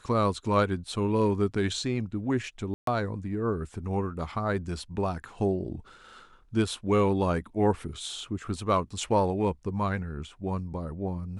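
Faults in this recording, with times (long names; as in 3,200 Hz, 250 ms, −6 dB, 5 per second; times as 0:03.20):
0:02.74–0:02.87: drop-out 133 ms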